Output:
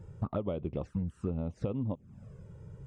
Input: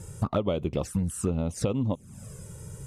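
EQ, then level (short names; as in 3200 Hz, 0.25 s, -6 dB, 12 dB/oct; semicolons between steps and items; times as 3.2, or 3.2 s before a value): tape spacing loss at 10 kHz 33 dB; -5.5 dB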